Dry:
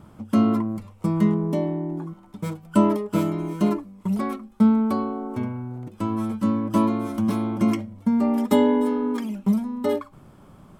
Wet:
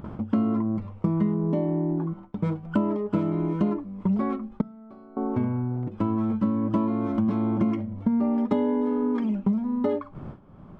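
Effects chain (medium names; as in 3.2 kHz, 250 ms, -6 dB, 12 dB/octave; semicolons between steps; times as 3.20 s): compression 6:1, threshold -26 dBFS, peak gain reduction 13 dB; gate with hold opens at -38 dBFS; tape spacing loss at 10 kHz 34 dB; upward compressor, threshold -34 dBFS; 4.61–5.17 s: chord resonator C3 major, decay 0.35 s; trim +6 dB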